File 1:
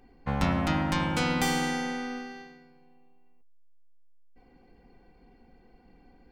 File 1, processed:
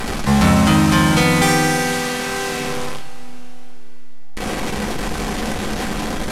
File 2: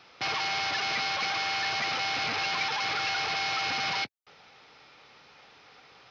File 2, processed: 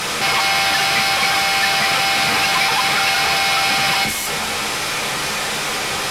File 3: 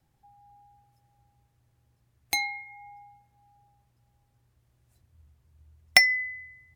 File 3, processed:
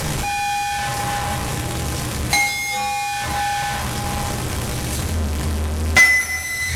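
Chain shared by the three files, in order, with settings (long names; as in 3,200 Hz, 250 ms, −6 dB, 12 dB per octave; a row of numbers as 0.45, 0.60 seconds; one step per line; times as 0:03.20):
linear delta modulator 64 kbit/s, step −29.5 dBFS
coupled-rooms reverb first 0.28 s, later 3.9 s, from −20 dB, DRR 1.5 dB
sine wavefolder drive 6 dB, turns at −8 dBFS
level +1.5 dB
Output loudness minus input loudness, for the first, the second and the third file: +11.0, +12.5, +3.5 LU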